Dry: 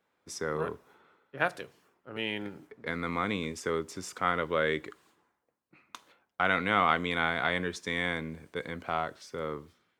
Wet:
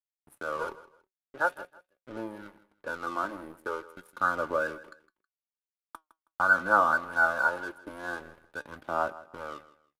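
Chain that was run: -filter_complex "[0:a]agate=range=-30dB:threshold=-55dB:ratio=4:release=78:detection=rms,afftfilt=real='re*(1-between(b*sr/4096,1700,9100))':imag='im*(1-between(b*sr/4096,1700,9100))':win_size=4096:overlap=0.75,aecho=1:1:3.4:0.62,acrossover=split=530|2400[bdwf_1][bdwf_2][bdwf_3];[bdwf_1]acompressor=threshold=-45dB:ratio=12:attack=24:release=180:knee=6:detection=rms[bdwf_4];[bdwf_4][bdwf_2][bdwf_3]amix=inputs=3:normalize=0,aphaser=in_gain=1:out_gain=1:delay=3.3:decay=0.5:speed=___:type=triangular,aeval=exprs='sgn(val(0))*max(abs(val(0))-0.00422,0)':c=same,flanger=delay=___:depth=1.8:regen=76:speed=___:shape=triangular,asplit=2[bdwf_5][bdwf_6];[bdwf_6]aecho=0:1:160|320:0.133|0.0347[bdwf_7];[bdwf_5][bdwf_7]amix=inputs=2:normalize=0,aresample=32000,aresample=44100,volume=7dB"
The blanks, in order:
0.44, 5.2, 1.2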